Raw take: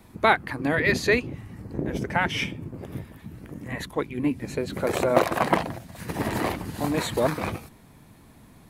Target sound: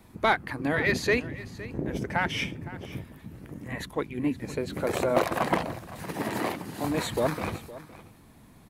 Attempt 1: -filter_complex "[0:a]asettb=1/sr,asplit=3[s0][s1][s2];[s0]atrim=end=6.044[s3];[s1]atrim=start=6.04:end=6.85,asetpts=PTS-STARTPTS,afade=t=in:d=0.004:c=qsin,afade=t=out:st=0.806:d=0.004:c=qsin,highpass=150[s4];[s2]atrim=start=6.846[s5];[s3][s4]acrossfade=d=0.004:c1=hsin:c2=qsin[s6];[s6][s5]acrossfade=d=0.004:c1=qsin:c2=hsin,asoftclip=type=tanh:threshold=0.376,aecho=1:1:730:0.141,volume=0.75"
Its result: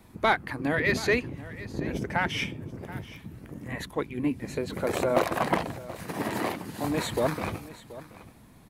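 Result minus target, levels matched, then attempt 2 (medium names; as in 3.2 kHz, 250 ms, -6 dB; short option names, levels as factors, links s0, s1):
echo 217 ms late
-filter_complex "[0:a]asettb=1/sr,asplit=3[s0][s1][s2];[s0]atrim=end=6.044[s3];[s1]atrim=start=6.04:end=6.85,asetpts=PTS-STARTPTS,afade=t=in:d=0.004:c=qsin,afade=t=out:st=0.806:d=0.004:c=qsin,highpass=150[s4];[s2]atrim=start=6.846[s5];[s3][s4]acrossfade=d=0.004:c1=hsin:c2=qsin[s6];[s6][s5]acrossfade=d=0.004:c1=qsin:c2=hsin,asoftclip=type=tanh:threshold=0.376,aecho=1:1:513:0.141,volume=0.75"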